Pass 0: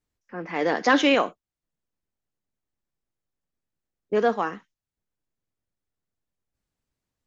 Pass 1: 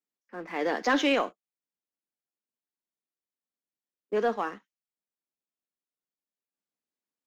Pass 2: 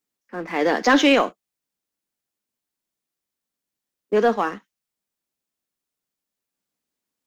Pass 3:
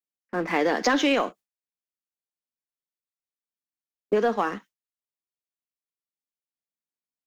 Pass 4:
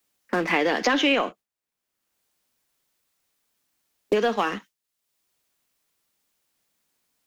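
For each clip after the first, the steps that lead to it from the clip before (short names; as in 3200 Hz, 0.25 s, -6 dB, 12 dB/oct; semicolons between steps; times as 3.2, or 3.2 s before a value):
HPF 200 Hz 24 dB/oct; sample leveller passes 1; gain -8 dB
tone controls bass +4 dB, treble +2 dB; gain +8 dB
gate with hold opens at -41 dBFS; compressor, threshold -23 dBFS, peak gain reduction 11 dB; gain +3.5 dB
dynamic EQ 2800 Hz, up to +8 dB, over -43 dBFS, Q 1.7; three-band squash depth 70%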